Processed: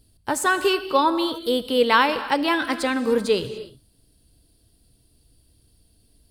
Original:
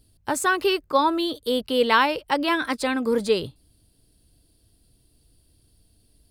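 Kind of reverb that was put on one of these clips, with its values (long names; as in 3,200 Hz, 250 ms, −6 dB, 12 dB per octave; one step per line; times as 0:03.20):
reverb whose tail is shaped and stops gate 320 ms flat, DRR 11 dB
level +1 dB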